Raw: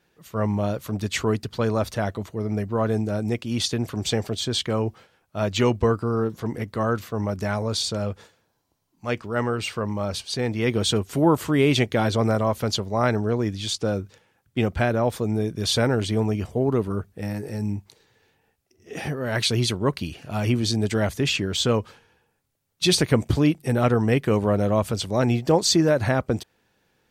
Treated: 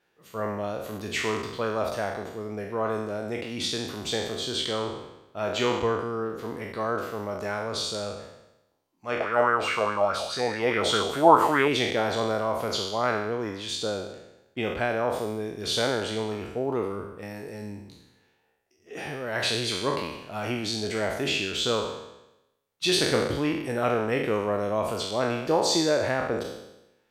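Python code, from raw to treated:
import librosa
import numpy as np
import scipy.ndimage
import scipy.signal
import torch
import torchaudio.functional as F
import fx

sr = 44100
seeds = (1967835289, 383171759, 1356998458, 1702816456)

y = fx.spec_trails(x, sr, decay_s=0.93)
y = fx.bass_treble(y, sr, bass_db=-10, treble_db=-5)
y = fx.bell_lfo(y, sr, hz=4.8, low_hz=660.0, high_hz=1600.0, db=15, at=(9.2, 11.68))
y = F.gain(torch.from_numpy(y), -4.5).numpy()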